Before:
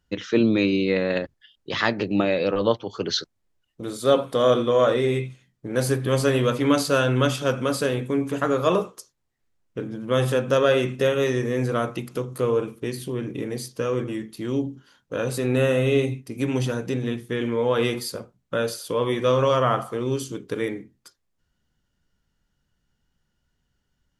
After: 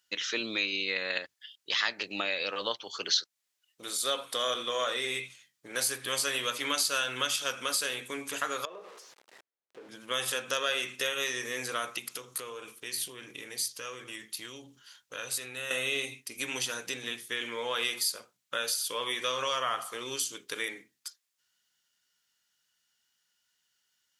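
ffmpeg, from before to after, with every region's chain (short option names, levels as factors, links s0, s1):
-filter_complex "[0:a]asettb=1/sr,asplit=3[s0][s1][s2];[s0]atrim=end=8.654[s3];[s1]atrim=start=8.65:end=9.89,asetpts=PTS-STARTPTS,afade=t=in:d=0.004:c=qsin,afade=t=out:st=1.236:d=0.004:c=qsin,aeval=exprs='val(0)+0.5*0.0266*sgn(val(0))':c=same,acompressor=threshold=0.0447:ratio=8:attack=3.2:release=140:knee=1:detection=peak,bandpass=f=480:t=q:w=1.3[s4];[s2]atrim=start=9.886[s5];[s3][s4]acrossfade=d=0.004:c1=hsin:c2=qsin[s6];[s6][s5]acrossfade=d=0.004:c1=qsin:c2=hsin,asettb=1/sr,asplit=3[s7][s8][s9];[s7]atrim=end=11.984[s10];[s8]atrim=start=11.98:end=15.71,asetpts=PTS-STARTPTS,afade=t=in:d=0.004:c=qsin,afade=t=out:st=3.726:d=0.004:c=qsin,asubboost=boost=4:cutoff=120,acompressor=threshold=0.0355:ratio=3:attack=3.2:release=140:knee=1:detection=peak[s11];[s9]atrim=start=15.706[s12];[s10][s11]acrossfade=d=0.004:c1=hsin:c2=qsin[s13];[s13][s12]acrossfade=d=0.004:c1=qsin:c2=hsin,highpass=f=810:p=1,tiltshelf=f=1400:g=-9,acompressor=threshold=0.0316:ratio=2"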